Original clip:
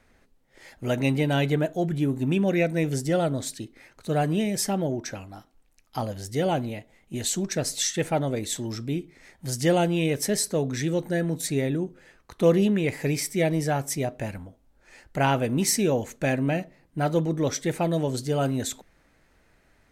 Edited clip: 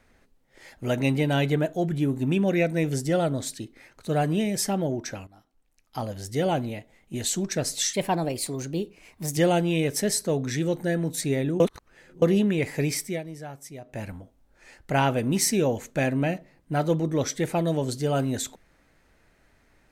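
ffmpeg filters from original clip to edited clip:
-filter_complex "[0:a]asplit=8[a][b][c][d][e][f][g][h];[a]atrim=end=5.27,asetpts=PTS-STARTPTS,afade=t=out:st=5.266:d=0.004:c=hsin:silence=0.188365[i];[b]atrim=start=5.27:end=7.934,asetpts=PTS-STARTPTS,afade=t=in:d=0.98:silence=0.188365[j];[c]atrim=start=7.93:end=9.63,asetpts=PTS-STARTPTS,asetrate=52038,aresample=44100[k];[d]atrim=start=9.626:end=11.862[l];[e]atrim=start=11.858:end=12.482,asetpts=PTS-STARTPTS,areverse[m];[f]atrim=start=12.478:end=13.48,asetpts=PTS-STARTPTS,afade=t=out:st=0.772:d=0.23:silence=0.211349[n];[g]atrim=start=13.48:end=14.1,asetpts=PTS-STARTPTS,volume=-13.5dB[o];[h]atrim=start=14.1,asetpts=PTS-STARTPTS,afade=t=in:d=0.23:silence=0.211349[p];[i][j]concat=n=2:v=0:a=1[q];[q][k]acrossfade=d=0.004:c1=hsin:c2=hsin[r];[r][l]acrossfade=d=0.004:c1=hsin:c2=hsin[s];[s][m]acrossfade=d=0.004:c1=hsin:c2=hsin[t];[n][o][p]concat=n=3:v=0:a=1[u];[t][u]acrossfade=d=0.004:c1=hsin:c2=hsin"

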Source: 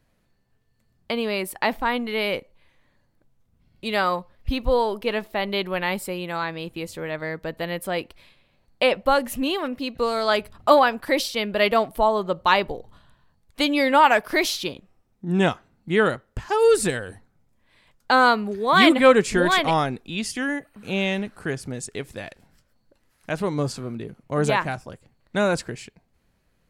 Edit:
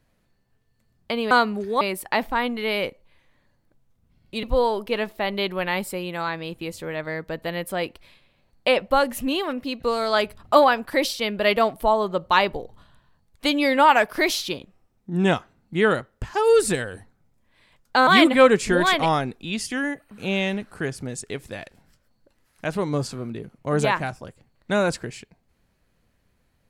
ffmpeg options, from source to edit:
-filter_complex "[0:a]asplit=5[a][b][c][d][e];[a]atrim=end=1.312[f];[b]atrim=start=18.218:end=18.722[g];[c]atrim=start=1.308:end=3.932[h];[d]atrim=start=4.578:end=18.222[i];[e]atrim=start=18.718[j];[f][g]acrossfade=d=0.004:c1=hsin:c2=hsin[k];[k][h]acrossfade=d=0.004:c1=hsin:c2=hsin[l];[l][i]acrossfade=d=0.004:c1=hsin:c2=hsin[m];[m][j]acrossfade=d=0.004:c1=hsin:c2=hsin"

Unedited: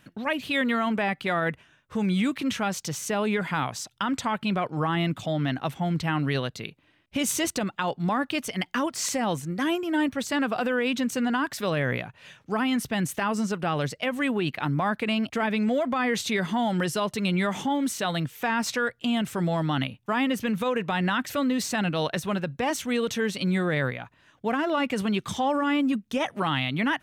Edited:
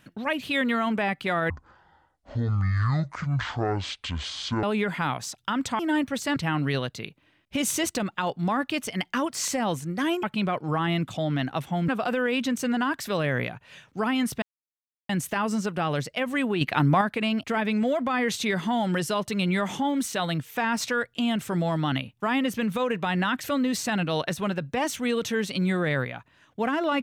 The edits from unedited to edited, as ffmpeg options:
-filter_complex "[0:a]asplit=10[a][b][c][d][e][f][g][h][i][j];[a]atrim=end=1.504[k];[b]atrim=start=1.5:end=3.16,asetpts=PTS-STARTPTS,asetrate=23373,aresample=44100[l];[c]atrim=start=3.156:end=4.322[m];[d]atrim=start=9.838:end=10.412[n];[e]atrim=start=5.968:end=9.842[o];[f]atrim=start=4.318:end=5.972[p];[g]atrim=start=10.408:end=12.95,asetpts=PTS-STARTPTS,afade=t=out:st=2.538:d=0.004:c=hsin,apad=pad_dur=0.67[q];[h]atrim=start=12.95:end=14.472,asetpts=PTS-STARTPTS,afade=t=in:d=0.004:c=hsin[r];[i]atrim=start=14.468:end=14.872,asetpts=PTS-STARTPTS,volume=5.5dB[s];[j]atrim=start=14.868[t];[k][l]acrossfade=d=0.004:c1=hsin:c2=hsin[u];[u][m]acrossfade=d=0.004:c1=hsin:c2=hsin[v];[v][n]acrossfade=d=0.004:c1=hsin:c2=hsin[w];[w][o]acrossfade=d=0.004:c1=hsin:c2=hsin[x];[x][p]acrossfade=d=0.004:c1=hsin:c2=hsin[y];[q][r]concat=n=2:v=0:a=1[z];[y][z]acrossfade=d=0.004:c1=hsin:c2=hsin[aa];[aa][s]acrossfade=d=0.004:c1=hsin:c2=hsin[ab];[ab][t]acrossfade=d=0.004:c1=hsin:c2=hsin"

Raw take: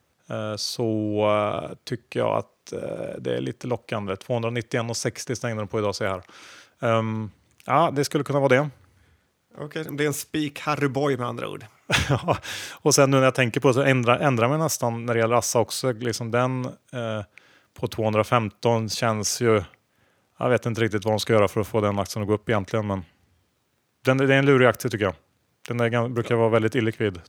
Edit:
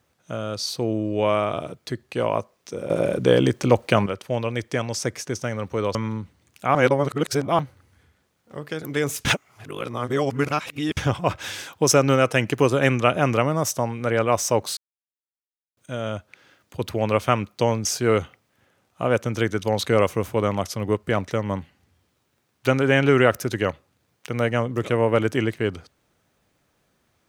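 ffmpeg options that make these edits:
-filter_complex "[0:a]asplit=11[a][b][c][d][e][f][g][h][i][j][k];[a]atrim=end=2.902[l];[b]atrim=start=2.898:end=4.062,asetpts=PTS-STARTPTS,volume=9.5dB[m];[c]atrim=start=4.058:end=5.952[n];[d]atrim=start=6.988:end=7.792[o];[e]atrim=start=7.788:end=8.632,asetpts=PTS-STARTPTS,areverse[p];[f]atrim=start=8.628:end=10.292[q];[g]atrim=start=10.288:end=12.012,asetpts=PTS-STARTPTS,areverse[r];[h]atrim=start=12.008:end=15.81,asetpts=PTS-STARTPTS,afade=t=out:st=3.798:d=0.004:c=hsin[s];[i]atrim=start=15.81:end=16.81,asetpts=PTS-STARTPTS,volume=0[t];[j]atrim=start=16.81:end=18.892,asetpts=PTS-STARTPTS,afade=t=in:d=0.004:c=hsin[u];[k]atrim=start=19.248[v];[l][m]acrossfade=d=0.004:c1=hsin:c2=hsin[w];[w][n]acrossfade=d=0.004:c1=hsin:c2=hsin[x];[x][o]acrossfade=d=0.004:c1=hsin:c2=hsin[y];[y][p]acrossfade=d=0.004:c1=hsin:c2=hsin[z];[z][q]acrossfade=d=0.004:c1=hsin:c2=hsin[aa];[aa][r]acrossfade=d=0.004:c1=hsin:c2=hsin[ab];[s][t][u]concat=n=3:v=0:a=1[ac];[ab][ac]acrossfade=d=0.004:c1=hsin:c2=hsin[ad];[ad][v]acrossfade=d=0.004:c1=hsin:c2=hsin"

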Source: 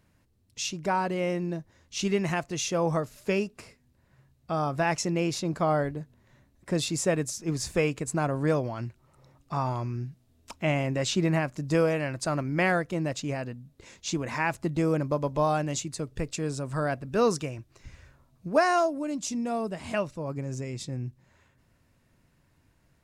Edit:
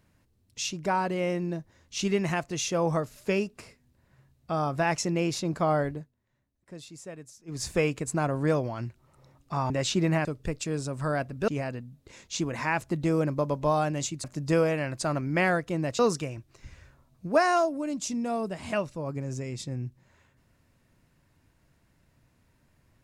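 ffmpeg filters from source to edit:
-filter_complex "[0:a]asplit=8[a][b][c][d][e][f][g][h];[a]atrim=end=6.11,asetpts=PTS-STARTPTS,afade=t=out:st=5.94:d=0.17:silence=0.149624[i];[b]atrim=start=6.11:end=7.47,asetpts=PTS-STARTPTS,volume=-16.5dB[j];[c]atrim=start=7.47:end=9.702,asetpts=PTS-STARTPTS,afade=t=in:d=0.17:silence=0.149624[k];[d]atrim=start=10.908:end=11.462[l];[e]atrim=start=15.968:end=17.202[m];[f]atrim=start=13.208:end=15.972[n];[g]atrim=start=11.458:end=13.212[o];[h]atrim=start=17.198[p];[i][j][k]concat=n=3:v=0:a=1[q];[q][l]acrossfade=d=0.004:c1=hsin:c2=hsin[r];[r][m]acrossfade=d=0.004:c1=hsin:c2=hsin[s];[s][n]acrossfade=d=0.004:c1=hsin:c2=hsin[t];[t][o]acrossfade=d=0.004:c1=hsin:c2=hsin[u];[u][p]acrossfade=d=0.004:c1=hsin:c2=hsin"

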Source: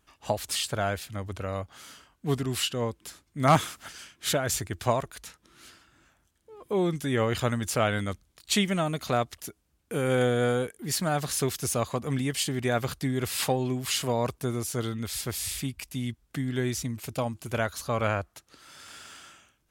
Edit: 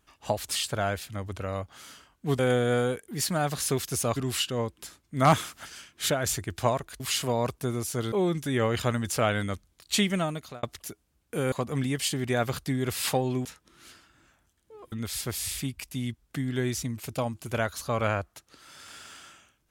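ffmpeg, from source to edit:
-filter_complex "[0:a]asplit=9[a][b][c][d][e][f][g][h][i];[a]atrim=end=2.392[j];[b]atrim=start=10.098:end=11.872[k];[c]atrim=start=2.388:end=5.232[l];[d]atrim=start=13.798:end=14.922[m];[e]atrim=start=6.698:end=9.21,asetpts=PTS-STARTPTS,afade=t=out:st=2.062:d=0.45[n];[f]atrim=start=9.21:end=10.102,asetpts=PTS-STARTPTS,afade=t=in:d=0.004:c=hsin[o];[g]atrim=start=11.868:end=13.802[p];[h]atrim=start=5.228:end=6.702[q];[i]atrim=start=14.918[r];[j][k]acrossfade=d=0.004:c1=hsin:c2=hsin[s];[s][l]acrossfade=d=0.004:c1=hsin:c2=hsin[t];[t][m]acrossfade=d=0.004:c1=hsin:c2=hsin[u];[n][o]concat=n=2:v=0:a=1[v];[u][v]acrossfade=d=0.004:c1=hsin:c2=hsin[w];[w][p]acrossfade=d=0.004:c1=hsin:c2=hsin[x];[x][q]acrossfade=d=0.004:c1=hsin:c2=hsin[y];[y][r]acrossfade=d=0.004:c1=hsin:c2=hsin"

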